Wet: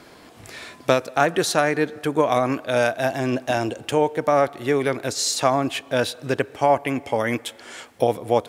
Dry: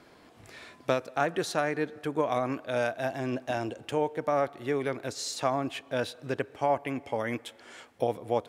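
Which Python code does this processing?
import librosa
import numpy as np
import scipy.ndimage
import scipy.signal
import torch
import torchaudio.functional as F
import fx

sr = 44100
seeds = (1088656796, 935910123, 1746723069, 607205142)

y = fx.high_shelf(x, sr, hz=4700.0, db=6.0)
y = F.gain(torch.from_numpy(y), 8.5).numpy()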